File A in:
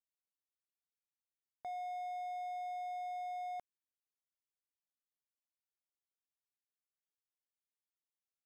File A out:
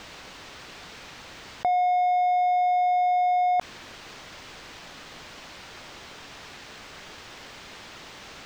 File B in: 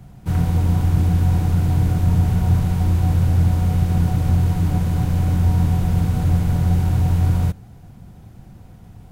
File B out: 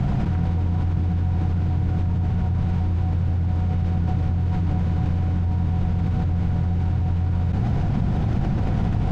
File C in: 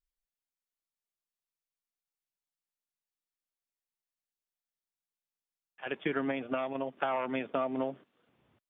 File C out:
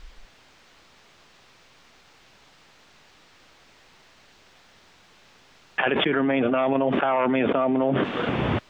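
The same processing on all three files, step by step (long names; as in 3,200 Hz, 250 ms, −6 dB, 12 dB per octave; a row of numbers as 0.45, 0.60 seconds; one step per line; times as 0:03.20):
high-frequency loss of the air 170 metres
envelope flattener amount 100%
loudness normalisation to −23 LKFS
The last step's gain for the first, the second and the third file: +20.0, −9.0, +7.0 decibels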